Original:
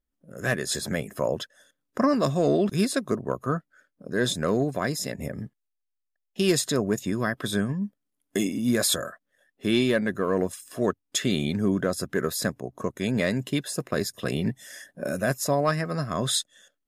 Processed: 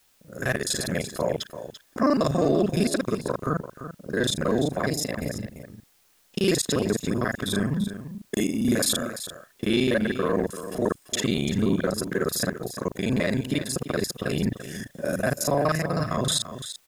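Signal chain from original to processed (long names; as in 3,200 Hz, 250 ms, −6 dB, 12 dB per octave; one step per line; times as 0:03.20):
reversed piece by piece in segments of 35 ms
in parallel at +1 dB: brickwall limiter −19.5 dBFS, peak gain reduction 8 dB
on the sum: transient designer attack −1 dB, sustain −5 dB
bit-depth reduction 10 bits, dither triangular
single-tap delay 340 ms −11.5 dB
level −3 dB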